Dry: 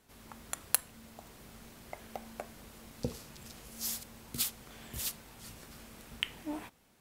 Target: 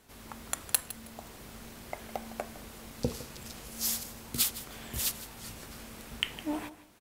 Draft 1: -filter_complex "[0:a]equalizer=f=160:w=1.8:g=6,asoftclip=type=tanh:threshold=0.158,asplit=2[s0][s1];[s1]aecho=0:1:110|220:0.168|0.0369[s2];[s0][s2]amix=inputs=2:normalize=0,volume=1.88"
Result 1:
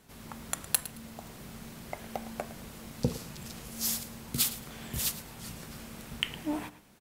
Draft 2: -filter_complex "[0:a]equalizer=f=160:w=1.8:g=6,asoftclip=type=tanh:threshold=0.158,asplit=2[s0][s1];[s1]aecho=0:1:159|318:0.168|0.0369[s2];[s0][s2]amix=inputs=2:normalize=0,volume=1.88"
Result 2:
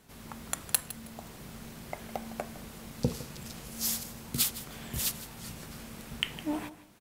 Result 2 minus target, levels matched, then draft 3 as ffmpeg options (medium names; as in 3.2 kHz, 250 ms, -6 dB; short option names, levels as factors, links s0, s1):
125 Hz band +4.0 dB
-filter_complex "[0:a]equalizer=f=160:w=1.8:g=-2,asoftclip=type=tanh:threshold=0.158,asplit=2[s0][s1];[s1]aecho=0:1:159|318:0.168|0.0369[s2];[s0][s2]amix=inputs=2:normalize=0,volume=1.88"